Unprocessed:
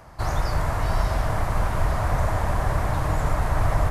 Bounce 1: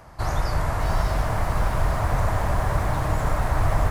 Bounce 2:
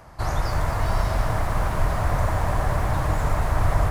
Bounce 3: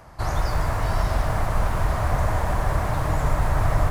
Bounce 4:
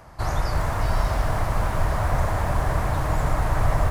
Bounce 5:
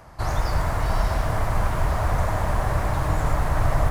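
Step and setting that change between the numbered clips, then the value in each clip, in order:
feedback echo at a low word length, delay time: 613, 242, 161, 359, 106 milliseconds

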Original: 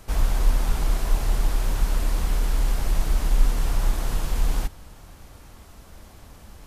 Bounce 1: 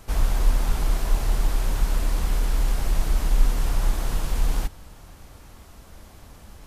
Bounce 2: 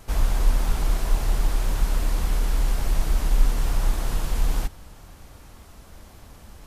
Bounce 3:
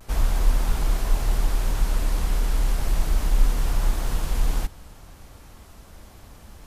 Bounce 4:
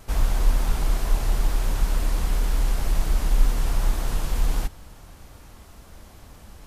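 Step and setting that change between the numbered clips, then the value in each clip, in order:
pitch vibrato, speed: 6.3, 3.6, 0.33, 2.1 Hertz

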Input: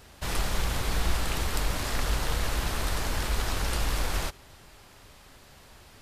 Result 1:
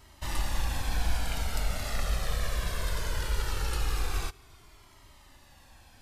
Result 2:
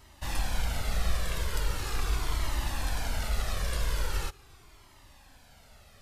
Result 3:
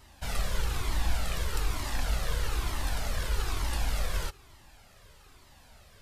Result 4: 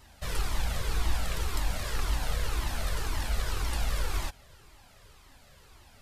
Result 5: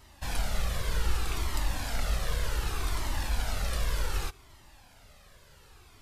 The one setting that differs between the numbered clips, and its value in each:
flanger whose copies keep moving one way, speed: 0.2, 0.41, 1.1, 1.9, 0.66 Hertz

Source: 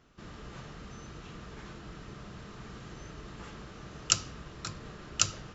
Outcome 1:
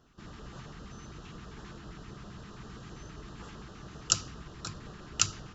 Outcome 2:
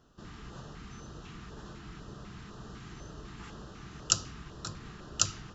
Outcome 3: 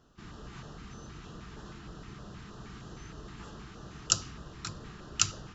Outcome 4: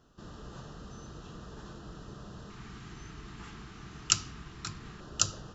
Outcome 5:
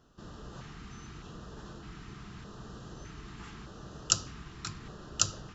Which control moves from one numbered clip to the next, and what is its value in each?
auto-filter notch, speed: 7.6, 2, 3.2, 0.2, 0.82 Hertz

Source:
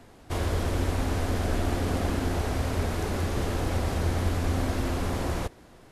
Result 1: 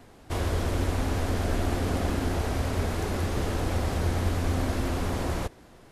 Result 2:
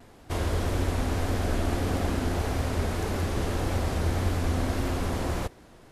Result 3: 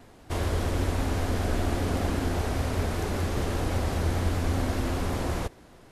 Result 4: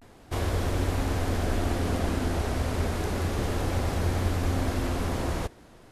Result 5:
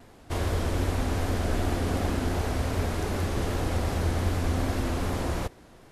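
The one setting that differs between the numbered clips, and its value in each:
pitch vibrato, speed: 8.7, 1.7, 5.1, 0.31, 2.6 Hertz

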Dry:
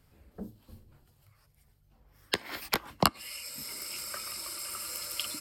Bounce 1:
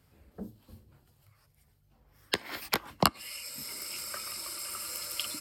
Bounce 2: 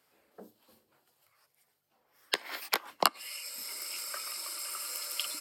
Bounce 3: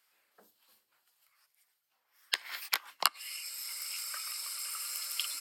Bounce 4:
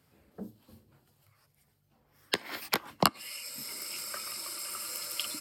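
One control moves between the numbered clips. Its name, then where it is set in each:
high-pass filter, corner frequency: 49, 460, 1,300, 130 Hertz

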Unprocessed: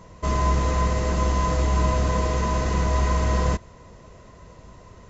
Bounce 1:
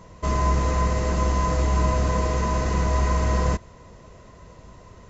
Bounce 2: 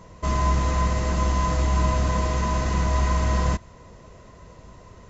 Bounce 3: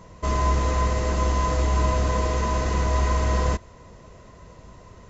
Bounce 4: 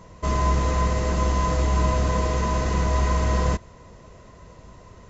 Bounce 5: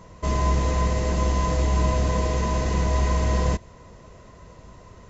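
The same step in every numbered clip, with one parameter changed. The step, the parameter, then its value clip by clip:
dynamic equaliser, frequency: 3,400, 450, 160, 9,200, 1,300 Hertz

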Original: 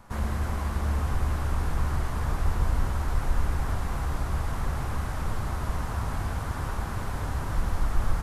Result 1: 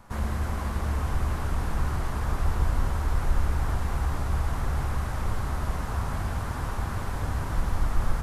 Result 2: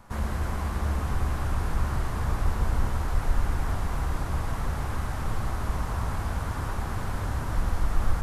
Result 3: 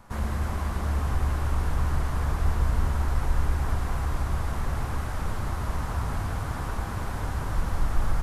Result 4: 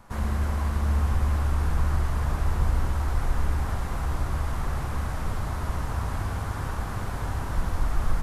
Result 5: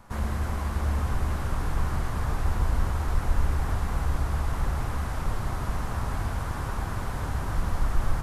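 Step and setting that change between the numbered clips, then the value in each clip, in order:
feedback echo with a low-pass in the loop, delay time: 448, 116, 209, 69, 657 milliseconds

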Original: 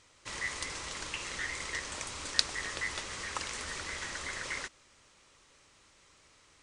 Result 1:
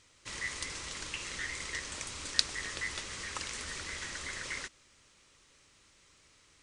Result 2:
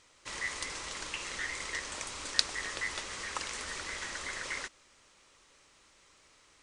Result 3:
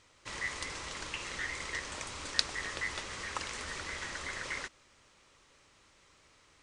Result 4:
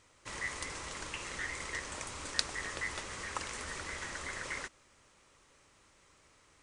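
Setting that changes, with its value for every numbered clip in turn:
parametric band, centre frequency: 800, 100, 14,000, 4,200 Hertz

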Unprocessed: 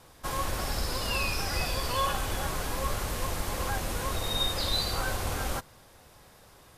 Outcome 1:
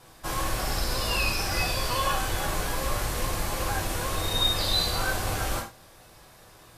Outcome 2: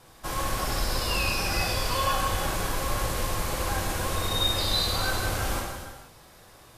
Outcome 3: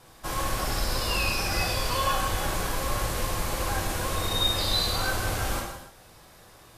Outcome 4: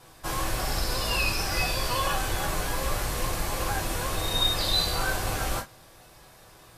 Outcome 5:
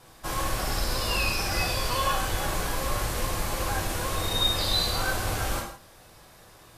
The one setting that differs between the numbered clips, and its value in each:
reverb whose tail is shaped and stops, gate: 130, 520, 330, 80, 200 milliseconds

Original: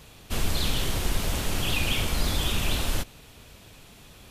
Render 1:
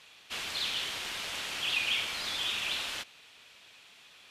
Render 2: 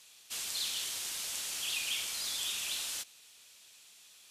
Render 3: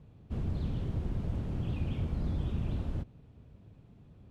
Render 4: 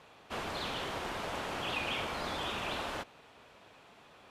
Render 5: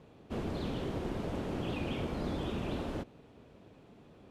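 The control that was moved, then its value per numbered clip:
resonant band-pass, frequency: 2,700, 7,200, 120, 950, 330 Hertz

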